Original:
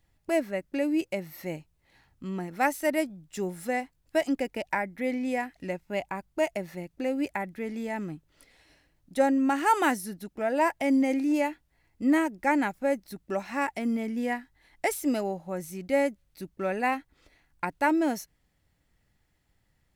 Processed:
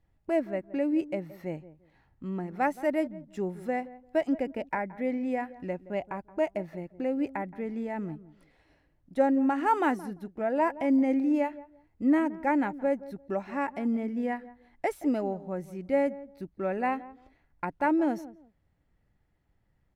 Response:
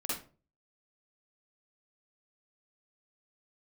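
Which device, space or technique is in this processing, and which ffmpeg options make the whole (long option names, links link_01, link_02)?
through cloth: -filter_complex "[0:a]highshelf=frequency=2900:gain=-18,asplit=2[link_01][link_02];[link_02]adelay=172,lowpass=frequency=880:poles=1,volume=-15.5dB,asplit=2[link_03][link_04];[link_04]adelay=172,lowpass=frequency=880:poles=1,volume=0.23[link_05];[link_01][link_03][link_05]amix=inputs=3:normalize=0"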